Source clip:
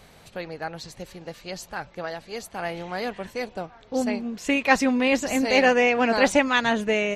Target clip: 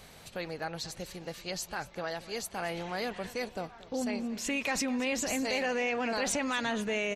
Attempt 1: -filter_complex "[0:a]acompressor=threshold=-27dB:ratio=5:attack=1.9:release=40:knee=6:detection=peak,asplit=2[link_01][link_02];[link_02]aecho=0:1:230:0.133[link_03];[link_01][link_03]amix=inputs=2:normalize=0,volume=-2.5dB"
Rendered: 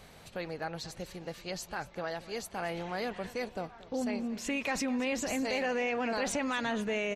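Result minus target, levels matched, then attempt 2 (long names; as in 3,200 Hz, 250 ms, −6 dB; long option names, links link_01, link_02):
8,000 Hz band −3.5 dB
-filter_complex "[0:a]acompressor=threshold=-27dB:ratio=5:attack=1.9:release=40:knee=6:detection=peak,highshelf=frequency=3000:gain=5.5,asplit=2[link_01][link_02];[link_02]aecho=0:1:230:0.133[link_03];[link_01][link_03]amix=inputs=2:normalize=0,volume=-2.5dB"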